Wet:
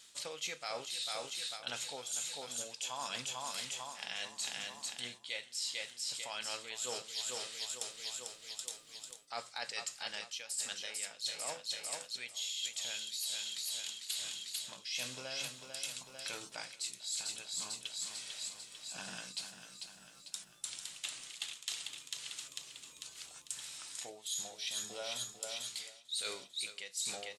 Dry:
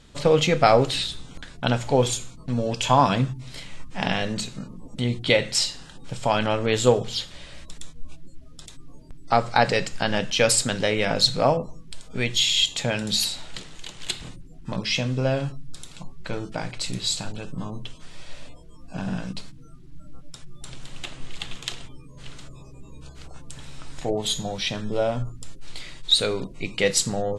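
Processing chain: differentiator; feedback echo 0.447 s, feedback 57%, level -9 dB; reverse; compressor 16:1, threshold -42 dBFS, peak gain reduction 25.5 dB; reverse; gain +5.5 dB

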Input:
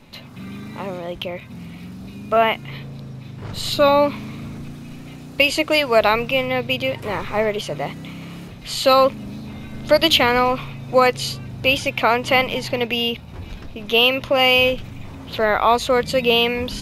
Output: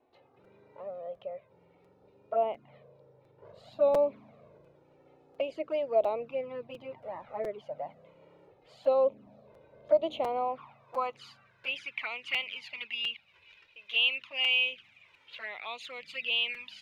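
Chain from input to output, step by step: envelope flanger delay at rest 2.8 ms, full sweep at -12.5 dBFS; band-pass sweep 590 Hz -> 2500 Hz, 10.08–12.21; crackling interface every 0.70 s, samples 256, repeat, from 0.44; gain -6.5 dB

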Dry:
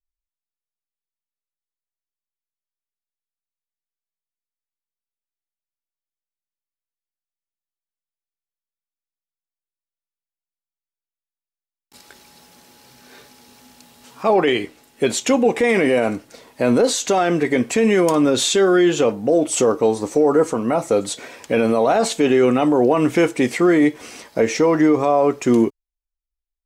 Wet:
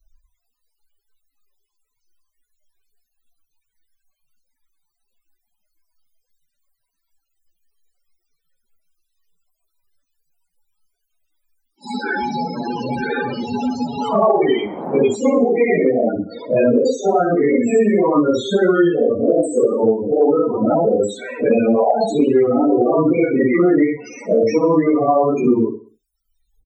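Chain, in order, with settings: phase scrambler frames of 0.2 s; loudest bins only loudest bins 16; 14.33–15.15 band noise 160–870 Hz -40 dBFS; feedback echo 64 ms, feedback 42%, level -19.5 dB; three-band squash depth 100%; gain +1.5 dB

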